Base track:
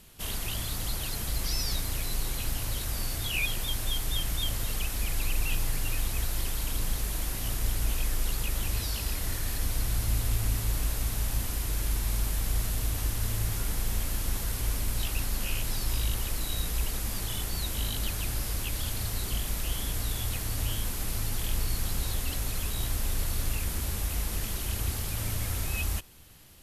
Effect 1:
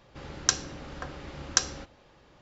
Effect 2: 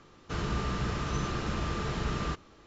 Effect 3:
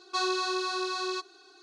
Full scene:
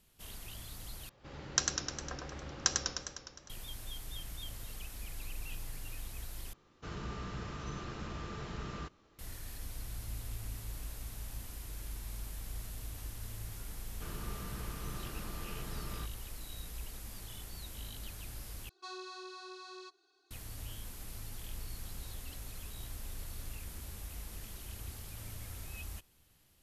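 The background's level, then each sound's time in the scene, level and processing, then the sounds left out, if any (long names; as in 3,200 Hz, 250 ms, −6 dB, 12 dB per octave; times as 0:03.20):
base track −14 dB
0:01.09: overwrite with 1 −6.5 dB + feedback echo with a swinging delay time 102 ms, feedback 67%, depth 117 cents, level −4.5 dB
0:06.53: overwrite with 2 −10 dB
0:13.71: mix in 2 −13 dB
0:18.69: overwrite with 3 −17 dB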